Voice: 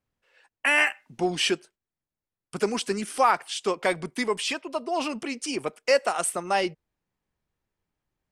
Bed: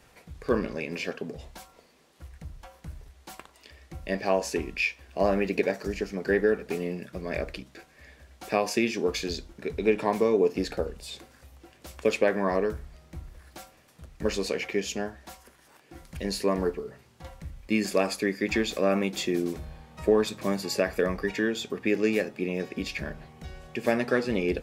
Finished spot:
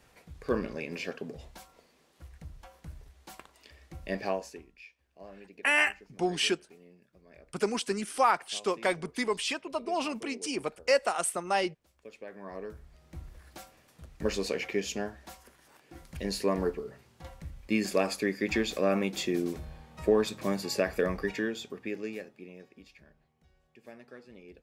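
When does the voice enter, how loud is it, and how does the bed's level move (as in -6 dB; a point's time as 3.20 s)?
5.00 s, -3.5 dB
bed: 4.26 s -4 dB
4.73 s -24.5 dB
12.10 s -24.5 dB
13.21 s -2.5 dB
21.24 s -2.5 dB
23.05 s -24.5 dB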